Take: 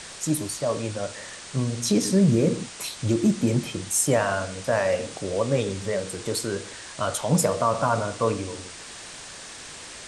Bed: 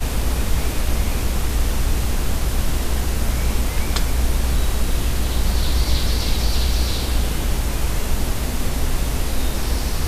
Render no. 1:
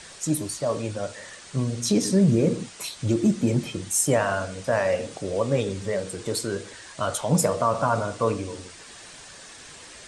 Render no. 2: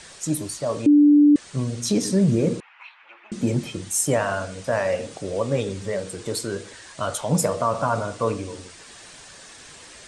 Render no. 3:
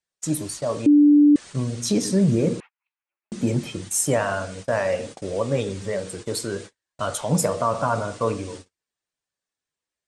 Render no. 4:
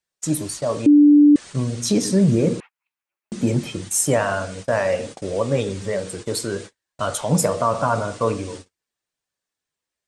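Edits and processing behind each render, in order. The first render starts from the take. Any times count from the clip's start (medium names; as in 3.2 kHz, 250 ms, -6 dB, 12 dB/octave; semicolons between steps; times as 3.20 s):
noise reduction 6 dB, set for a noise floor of -41 dBFS
0.86–1.36 s: bleep 293 Hz -10 dBFS; 2.60–3.32 s: Chebyshev band-pass 860–2600 Hz, order 3
gate -36 dBFS, range -45 dB
trim +2.5 dB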